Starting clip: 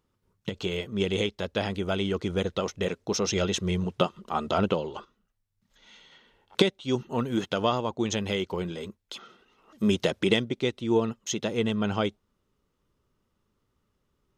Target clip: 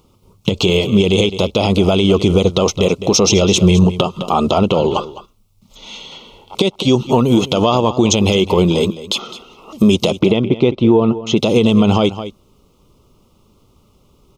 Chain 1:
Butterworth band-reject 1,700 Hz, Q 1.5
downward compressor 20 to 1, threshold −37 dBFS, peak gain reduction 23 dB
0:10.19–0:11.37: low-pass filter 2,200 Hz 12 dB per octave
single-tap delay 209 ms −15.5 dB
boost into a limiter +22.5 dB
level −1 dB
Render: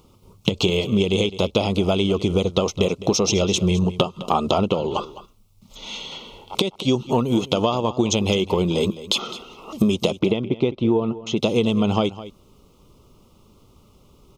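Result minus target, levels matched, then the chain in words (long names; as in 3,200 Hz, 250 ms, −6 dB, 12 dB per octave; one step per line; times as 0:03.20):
downward compressor: peak gain reduction +10 dB
Butterworth band-reject 1,700 Hz, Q 1.5
downward compressor 20 to 1, threshold −26.5 dBFS, peak gain reduction 13.5 dB
0:10.19–0:11.37: low-pass filter 2,200 Hz 12 dB per octave
single-tap delay 209 ms −15.5 dB
boost into a limiter +22.5 dB
level −1 dB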